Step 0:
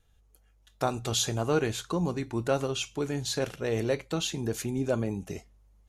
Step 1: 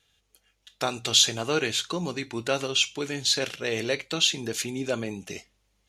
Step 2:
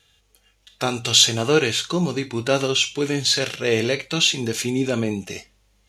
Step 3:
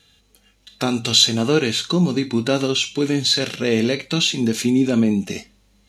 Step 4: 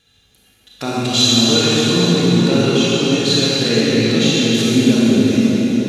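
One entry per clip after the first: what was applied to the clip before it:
frequency weighting D
harmonic-percussive split harmonic +9 dB; trim +1.5 dB
in parallel at +2 dB: compression, threshold -28 dBFS, peak gain reduction 17 dB; on the sum: small resonant body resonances 220/4000 Hz, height 11 dB, ringing for 30 ms; trim -4.5 dB
reverberation RT60 5.7 s, pre-delay 29 ms, DRR -8 dB; trim -4 dB

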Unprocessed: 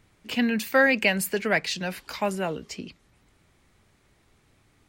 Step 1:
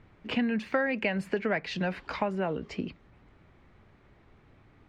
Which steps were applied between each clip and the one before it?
Bessel low-pass 1.8 kHz, order 2; compression 5:1, threshold -31 dBFS, peak gain reduction 13.5 dB; trim +5 dB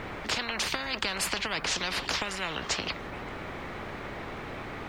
spectrum-flattening compressor 10:1; trim +2.5 dB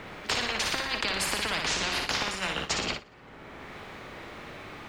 flutter echo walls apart 10 m, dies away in 0.8 s; gate -31 dBFS, range -22 dB; three bands compressed up and down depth 70%

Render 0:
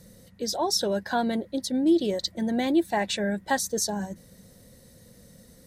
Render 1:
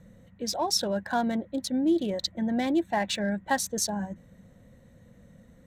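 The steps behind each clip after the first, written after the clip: local Wiener filter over 9 samples; peaking EQ 410 Hz -7 dB 0.54 oct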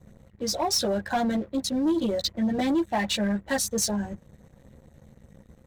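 chorus voices 6, 0.9 Hz, delay 14 ms, depth 1.4 ms; LFO notch sine 8.2 Hz 760–3000 Hz; waveshaping leveller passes 2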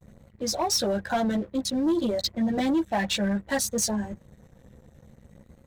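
vibrato 0.58 Hz 57 cents

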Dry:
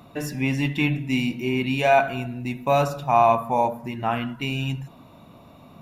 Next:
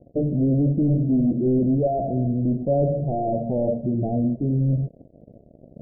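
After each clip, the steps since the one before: waveshaping leveller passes 5; steep low-pass 650 Hz 72 dB/octave; trim -8 dB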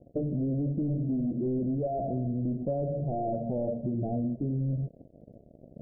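compression, threshold -23 dBFS, peak gain reduction 7 dB; trim -4 dB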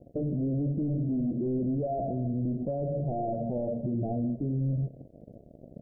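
peak limiter -26.5 dBFS, peak gain reduction 5 dB; delay 188 ms -22.5 dB; trim +2.5 dB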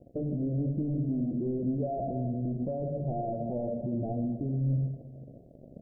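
reverberation RT60 1.6 s, pre-delay 74 ms, DRR 9.5 dB; trim -2 dB

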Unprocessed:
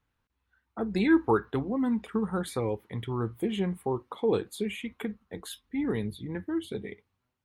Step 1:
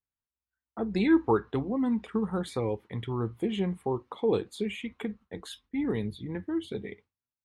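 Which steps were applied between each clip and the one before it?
low-pass 7.6 kHz 12 dB/octave; gate with hold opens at -46 dBFS; dynamic bell 1.5 kHz, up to -5 dB, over -50 dBFS, Q 2.9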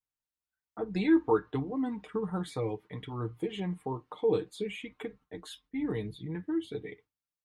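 comb 6.6 ms, depth 60%; flange 0.58 Hz, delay 2.1 ms, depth 4.3 ms, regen -62%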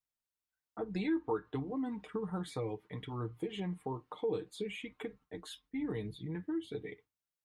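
compression 2:1, threshold -33 dBFS, peak gain reduction 8 dB; trim -2 dB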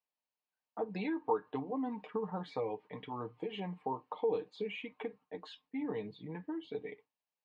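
cabinet simulation 280–4000 Hz, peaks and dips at 350 Hz -10 dB, 880 Hz +3 dB, 1.4 kHz -10 dB, 2 kHz -6 dB, 3.5 kHz -9 dB; trim +5 dB

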